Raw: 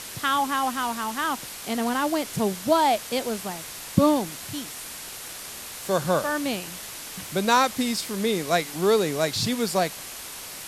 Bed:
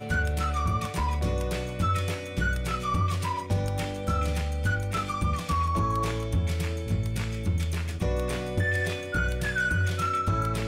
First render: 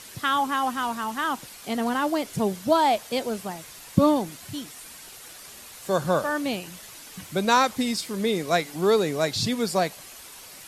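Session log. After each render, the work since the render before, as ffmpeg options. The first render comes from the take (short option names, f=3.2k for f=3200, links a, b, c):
-af "afftdn=nr=8:nf=-38"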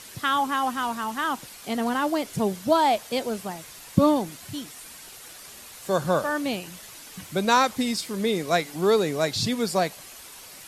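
-af anull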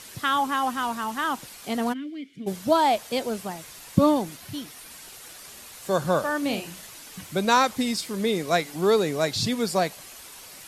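-filter_complex "[0:a]asplit=3[a][b][c];[a]afade=t=out:st=1.92:d=0.02[d];[b]asplit=3[e][f][g];[e]bandpass=f=270:t=q:w=8,volume=0dB[h];[f]bandpass=f=2.29k:t=q:w=8,volume=-6dB[i];[g]bandpass=f=3.01k:t=q:w=8,volume=-9dB[j];[h][i][j]amix=inputs=3:normalize=0,afade=t=in:st=1.92:d=0.02,afade=t=out:st=2.46:d=0.02[k];[c]afade=t=in:st=2.46:d=0.02[l];[d][k][l]amix=inputs=3:normalize=0,asettb=1/sr,asplit=3[m][n][o];[m]atrim=end=4.364[p];[n]atrim=start=4.36:end=4.91,asetpts=PTS-STARTPTS,afade=t=in:d=0.004:c=qsin,afade=t=out:st=0.546:d=0.004:c=qsin,equalizer=f=7.6k:w=2.9:g=-5.5[q];[o]atrim=start=4.906[r];[p][q]acrossfade=d=0.004:c1=hsin:c2=qsin[s];[s][r]acrossfade=d=0.004:c1=qsin:c2=hsin,asettb=1/sr,asplit=3[t][u][v];[t]atrim=end=6.384[w];[u]atrim=start=6.38:end=6.87,asetpts=PTS-STARTPTS,afade=t=in:d=0.004:c=qsin,afade=t=out:st=0.486:d=0.004:c=qsin,asplit=2[x][y];[y]adelay=42,volume=-7dB[z];[x][z]amix=inputs=2:normalize=0,atrim=end_sample=21609[aa];[v]atrim=start=6.866[ab];[w][aa]acrossfade=d=0.004:c1=hsin:c2=qsin[ac];[ac][ab]acrossfade=d=0.004:c1=qsin:c2=hsin"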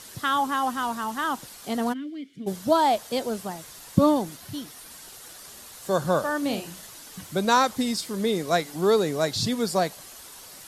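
-af "equalizer=f=2.4k:w=2.5:g=-5.5"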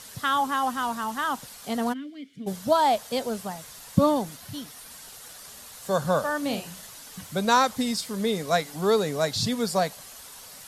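-af "equalizer=f=340:t=o:w=0.21:g=-14.5"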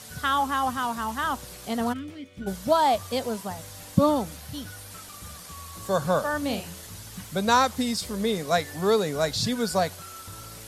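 -filter_complex "[1:a]volume=-17.5dB[a];[0:a][a]amix=inputs=2:normalize=0"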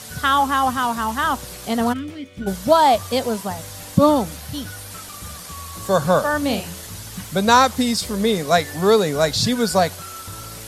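-af "volume=7dB,alimiter=limit=-2dB:level=0:latency=1"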